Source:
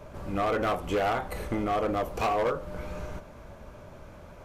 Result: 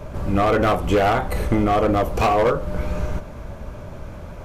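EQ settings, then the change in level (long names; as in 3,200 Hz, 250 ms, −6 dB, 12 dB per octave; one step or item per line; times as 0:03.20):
low-shelf EQ 210 Hz +7 dB
+8.0 dB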